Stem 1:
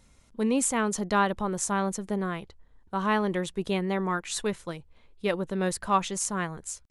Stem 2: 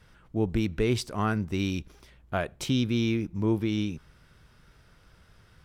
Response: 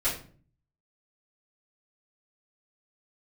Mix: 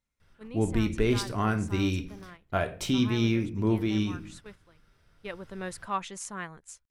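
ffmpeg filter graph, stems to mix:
-filter_complex "[0:a]equalizer=f=1900:t=o:w=1.8:g=6,volume=0.316,afade=t=in:st=4.91:d=0.74:silence=0.334965[s0];[1:a]adelay=200,volume=0.841,asplit=2[s1][s2];[s2]volume=0.224[s3];[2:a]atrim=start_sample=2205[s4];[s3][s4]afir=irnorm=-1:irlink=0[s5];[s0][s1][s5]amix=inputs=3:normalize=0,agate=range=0.398:threshold=0.00447:ratio=16:detection=peak"

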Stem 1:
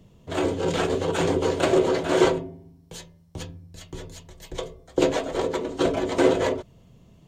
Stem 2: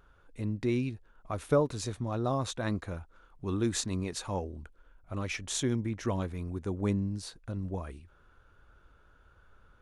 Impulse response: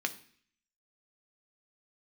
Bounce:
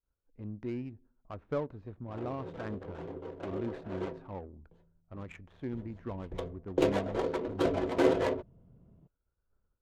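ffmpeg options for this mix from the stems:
-filter_complex "[0:a]adelay=1800,volume=0.501,afade=t=in:st=5.6:d=0.67:silence=0.223872[s0];[1:a]acrossover=split=3800[s1][s2];[s2]acompressor=threshold=0.00224:ratio=4:attack=1:release=60[s3];[s1][s3]amix=inputs=2:normalize=0,agate=range=0.0224:threshold=0.00316:ratio=3:detection=peak,volume=0.355,asplit=2[s4][s5];[s5]volume=0.158[s6];[2:a]atrim=start_sample=2205[s7];[s6][s7]afir=irnorm=-1:irlink=0[s8];[s0][s4][s8]amix=inputs=3:normalize=0,adynamicsmooth=sensitivity=7:basefreq=820"

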